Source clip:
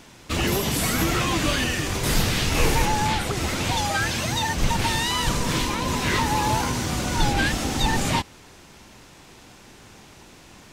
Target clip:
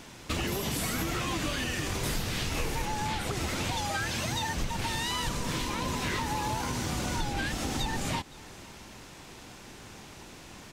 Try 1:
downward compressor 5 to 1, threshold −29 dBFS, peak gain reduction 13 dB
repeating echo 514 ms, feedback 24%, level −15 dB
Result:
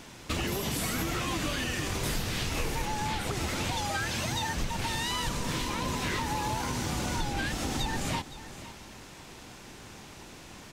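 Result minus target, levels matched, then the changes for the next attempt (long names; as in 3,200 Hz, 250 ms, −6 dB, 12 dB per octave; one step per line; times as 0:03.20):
echo-to-direct +7.5 dB
change: repeating echo 514 ms, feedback 24%, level −22.5 dB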